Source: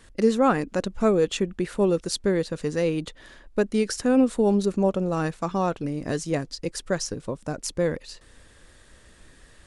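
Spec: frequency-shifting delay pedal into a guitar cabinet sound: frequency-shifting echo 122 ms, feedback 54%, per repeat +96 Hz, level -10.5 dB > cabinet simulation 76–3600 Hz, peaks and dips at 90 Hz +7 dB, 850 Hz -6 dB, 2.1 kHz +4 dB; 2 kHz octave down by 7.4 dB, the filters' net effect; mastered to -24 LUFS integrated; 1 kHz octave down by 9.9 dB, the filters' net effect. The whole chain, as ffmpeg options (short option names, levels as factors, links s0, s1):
-filter_complex "[0:a]equalizer=f=1000:t=o:g=-8.5,equalizer=f=2000:t=o:g=-8,asplit=7[s0][s1][s2][s3][s4][s5][s6];[s1]adelay=122,afreqshift=96,volume=0.299[s7];[s2]adelay=244,afreqshift=192,volume=0.16[s8];[s3]adelay=366,afreqshift=288,volume=0.0871[s9];[s4]adelay=488,afreqshift=384,volume=0.0468[s10];[s5]adelay=610,afreqshift=480,volume=0.0254[s11];[s6]adelay=732,afreqshift=576,volume=0.0136[s12];[s0][s7][s8][s9][s10][s11][s12]amix=inputs=7:normalize=0,highpass=76,equalizer=f=90:t=q:w=4:g=7,equalizer=f=850:t=q:w=4:g=-6,equalizer=f=2100:t=q:w=4:g=4,lowpass=f=3600:w=0.5412,lowpass=f=3600:w=1.3066,volume=1.33"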